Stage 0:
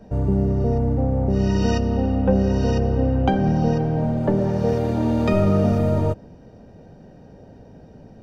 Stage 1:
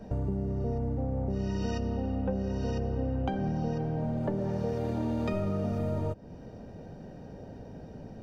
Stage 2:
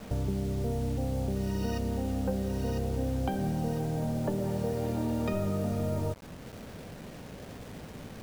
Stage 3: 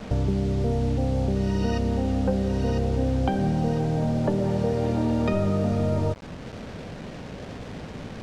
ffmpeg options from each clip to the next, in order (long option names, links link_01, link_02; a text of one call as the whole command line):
ffmpeg -i in.wav -af "acompressor=threshold=-30dB:ratio=4" out.wav
ffmpeg -i in.wav -af "acrusher=bits=7:mix=0:aa=0.000001" out.wav
ffmpeg -i in.wav -af "lowpass=5500,volume=7dB" out.wav